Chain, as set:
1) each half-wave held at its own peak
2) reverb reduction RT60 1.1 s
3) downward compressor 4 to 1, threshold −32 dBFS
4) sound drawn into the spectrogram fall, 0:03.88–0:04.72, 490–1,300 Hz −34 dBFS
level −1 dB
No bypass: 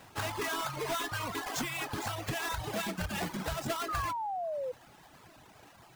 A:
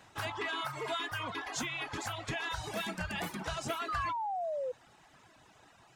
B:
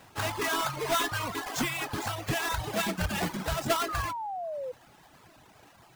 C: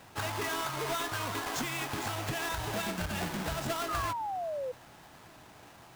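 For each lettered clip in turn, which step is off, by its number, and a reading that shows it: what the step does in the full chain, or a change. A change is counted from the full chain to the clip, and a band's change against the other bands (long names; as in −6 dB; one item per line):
1, distortion level −5 dB
3, average gain reduction 2.5 dB
2, change in momentary loudness spread +17 LU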